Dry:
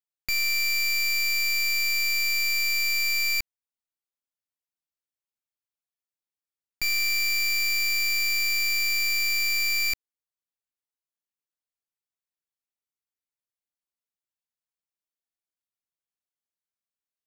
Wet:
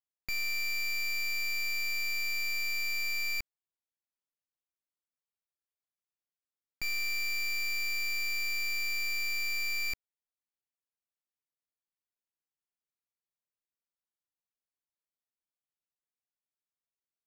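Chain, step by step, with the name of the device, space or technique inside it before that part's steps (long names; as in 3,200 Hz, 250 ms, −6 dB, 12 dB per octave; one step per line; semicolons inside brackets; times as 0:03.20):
behind a face mask (high-shelf EQ 2,800 Hz −7.5 dB)
level −4.5 dB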